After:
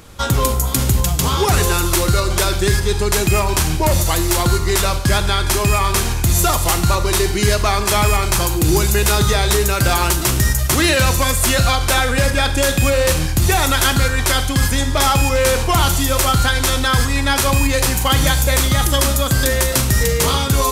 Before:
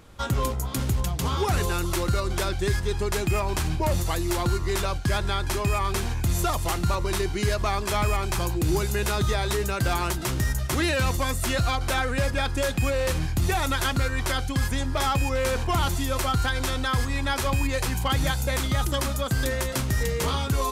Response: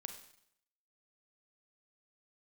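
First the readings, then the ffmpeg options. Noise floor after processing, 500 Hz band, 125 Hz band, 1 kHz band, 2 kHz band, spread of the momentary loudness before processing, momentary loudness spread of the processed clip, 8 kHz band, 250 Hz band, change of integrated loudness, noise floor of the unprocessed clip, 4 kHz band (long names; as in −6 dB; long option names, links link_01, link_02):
−20 dBFS, +9.0 dB, +8.5 dB, +9.0 dB, +10.0 dB, 2 LU, 2 LU, +14.5 dB, +8.5 dB, +10.0 dB, −29 dBFS, +12.0 dB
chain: -filter_complex "[0:a]asplit=2[link_01][link_02];[1:a]atrim=start_sample=2205,highshelf=frequency=3700:gain=9.5[link_03];[link_02][link_03]afir=irnorm=-1:irlink=0,volume=8.5dB[link_04];[link_01][link_04]amix=inputs=2:normalize=0"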